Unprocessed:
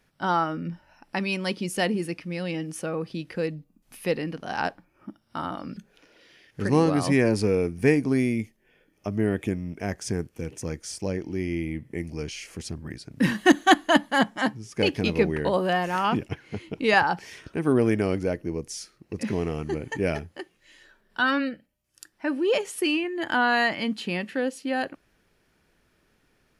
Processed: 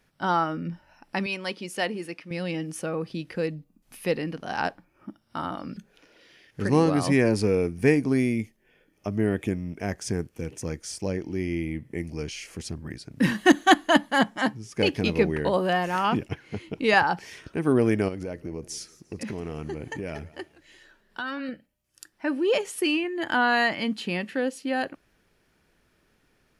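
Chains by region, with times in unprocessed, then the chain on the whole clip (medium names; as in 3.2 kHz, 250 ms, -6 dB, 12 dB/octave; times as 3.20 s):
1.26–2.31 s: high-pass 490 Hz 6 dB/octave + treble shelf 5.7 kHz -7 dB
18.08–21.49 s: compression, threshold -29 dBFS + modulated delay 173 ms, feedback 35%, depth 165 cents, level -20 dB
whole clip: none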